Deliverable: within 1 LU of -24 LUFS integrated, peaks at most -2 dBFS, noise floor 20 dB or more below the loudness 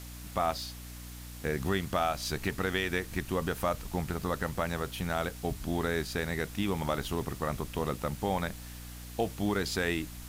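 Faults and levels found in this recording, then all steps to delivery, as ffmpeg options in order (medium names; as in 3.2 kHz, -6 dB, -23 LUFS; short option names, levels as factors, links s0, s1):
hum 60 Hz; highest harmonic 300 Hz; hum level -43 dBFS; noise floor -44 dBFS; noise floor target -53 dBFS; loudness -33.0 LUFS; peak level -16.5 dBFS; loudness target -24.0 LUFS
-> -af "bandreject=f=60:t=h:w=6,bandreject=f=120:t=h:w=6,bandreject=f=180:t=h:w=6,bandreject=f=240:t=h:w=6,bandreject=f=300:t=h:w=6"
-af "afftdn=nr=9:nf=-44"
-af "volume=2.82"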